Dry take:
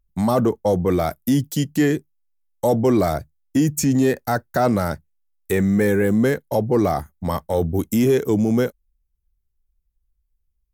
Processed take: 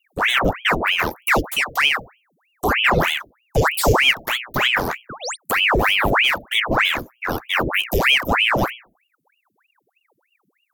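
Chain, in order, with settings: vibrato 3.2 Hz 30 cents; notches 60/120/180/240/300/360/420/480 Hz; 3.68–4.11 flutter echo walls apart 5.6 m, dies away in 0.43 s; 5.09–5.37 painted sound rise 520–7600 Hz -28 dBFS; envelope phaser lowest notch 180 Hz, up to 1700 Hz, full sweep at -25 dBFS; high shelf 6200 Hz +8.5 dB; ring modulator with a swept carrier 1500 Hz, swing 90%, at 3.2 Hz; gain +4 dB

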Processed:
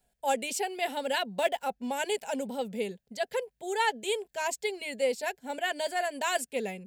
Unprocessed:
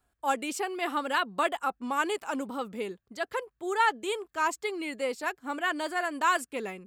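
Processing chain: 1.2–1.88 median filter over 5 samples; fixed phaser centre 320 Hz, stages 6; gain +4 dB

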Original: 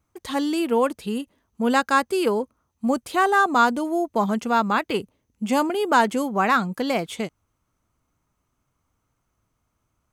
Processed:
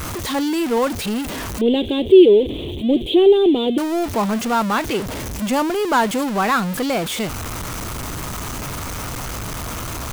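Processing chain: zero-crossing step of -20.5 dBFS; 1.61–3.78 EQ curve 230 Hz 0 dB, 370 Hz +14 dB, 1400 Hz -29 dB, 3400 Hz +10 dB, 5000 Hz -29 dB, 9000 Hz -20 dB; gain -1 dB

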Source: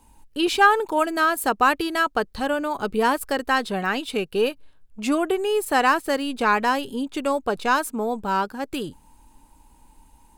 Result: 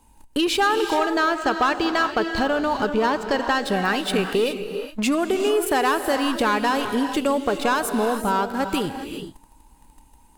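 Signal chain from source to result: 0.94–3.65 steep low-pass 7200 Hz 48 dB/oct; sample leveller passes 2; compressor 3:1, threshold -25 dBFS, peak gain reduction 12.5 dB; non-linear reverb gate 0.44 s rising, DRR 7 dB; gain +3 dB

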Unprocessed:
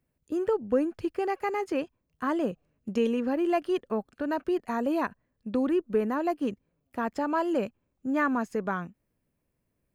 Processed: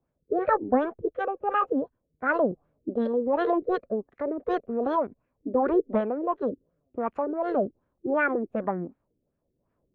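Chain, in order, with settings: rotary speaker horn 1.1 Hz; formant shift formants +5 st; LFO low-pass sine 2.7 Hz 340–1600 Hz; gain +1.5 dB

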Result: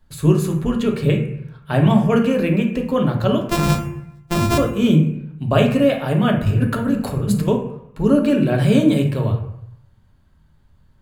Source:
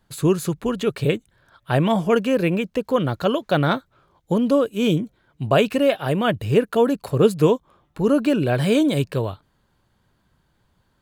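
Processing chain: 3.41–4.58 sample sorter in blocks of 128 samples; 6.46–7.48 negative-ratio compressor -24 dBFS, ratio -1; on a send: tone controls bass +11 dB, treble -2 dB + reverb RT60 0.75 s, pre-delay 3 ms, DRR 1.5 dB; on the sum: gain -2 dB

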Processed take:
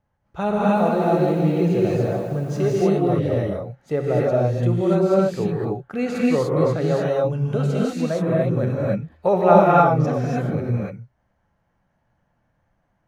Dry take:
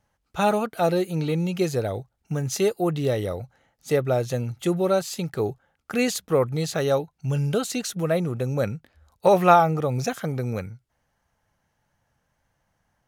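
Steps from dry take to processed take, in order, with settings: LPF 1100 Hz 6 dB/oct; non-linear reverb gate 0.32 s rising, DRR -5.5 dB; 0.6–2.82 lo-fi delay 0.161 s, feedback 55%, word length 8-bit, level -7 dB; gain -1 dB

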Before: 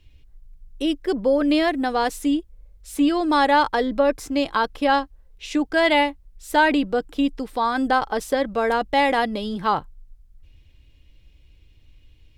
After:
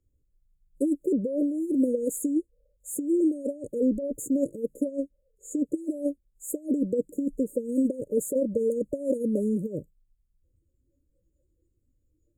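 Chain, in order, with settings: negative-ratio compressor -22 dBFS, ratio -0.5; spectral noise reduction 16 dB; brick-wall FIR band-stop 600–6500 Hz; low shelf 84 Hz -10.5 dB

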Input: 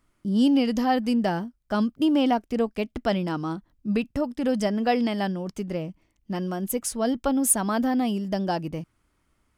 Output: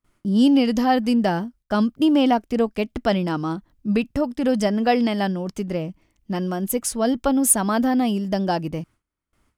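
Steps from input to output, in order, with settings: gate with hold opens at -58 dBFS; gain +4 dB

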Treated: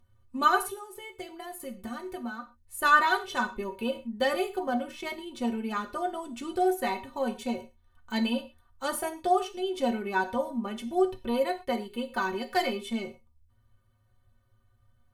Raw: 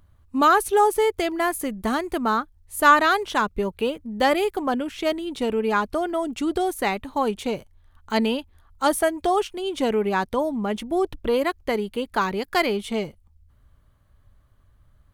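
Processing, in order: 0.67–2.81 compressor 6:1, threshold -29 dBFS, peak gain reduction 14 dB; metallic resonator 110 Hz, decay 0.22 s, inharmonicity 0.03; non-linear reverb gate 0.15 s falling, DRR 7.5 dB; gain +1.5 dB

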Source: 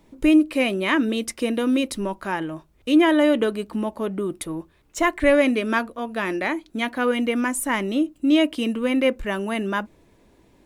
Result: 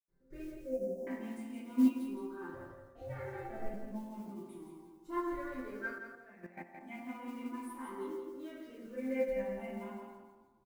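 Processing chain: moving spectral ripple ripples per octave 0.58, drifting +0.36 Hz, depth 13 dB; reverb RT60 1.2 s, pre-delay 77 ms; modulation noise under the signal 29 dB; 0.58–1.07 Chebyshev band-stop 560–5600 Hz, order 3; 2.54–3.74 ring modulator 220 Hz; low shelf 93 Hz +3 dB; resonator bank C3 sus4, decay 0.2 s; 5.98–6.81 level quantiser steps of 14 dB; feedback echo 0.17 s, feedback 26%, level -6 dB; upward expander 1.5:1, over -53 dBFS; gain +18 dB

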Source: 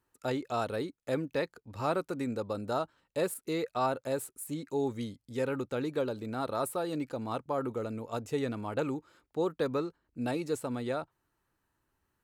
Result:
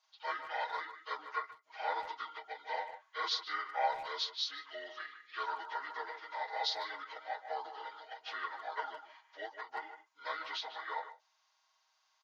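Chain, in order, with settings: inharmonic rescaling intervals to 75%; HPF 960 Hz 24 dB/oct; comb 6.4 ms, depth 99%; dynamic EQ 2700 Hz, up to -5 dB, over -54 dBFS, Q 1; speakerphone echo 0.15 s, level -10 dB; ending taper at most 250 dB/s; gain +6.5 dB

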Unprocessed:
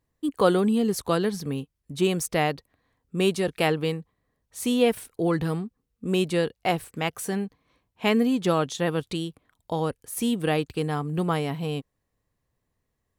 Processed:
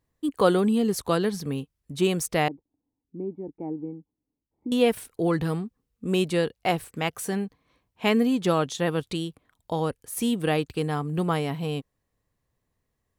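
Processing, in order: 2.48–4.72 vocal tract filter u

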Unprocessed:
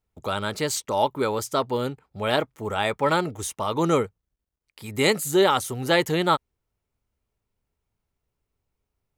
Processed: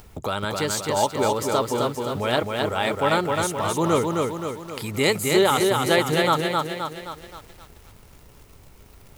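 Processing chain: upward compressor, threshold -24 dBFS; lo-fi delay 0.262 s, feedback 55%, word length 8-bit, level -3 dB

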